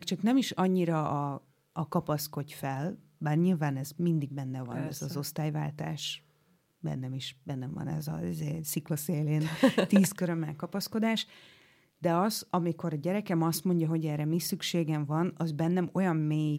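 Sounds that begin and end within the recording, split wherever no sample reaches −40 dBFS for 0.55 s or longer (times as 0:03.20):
0:06.84–0:11.23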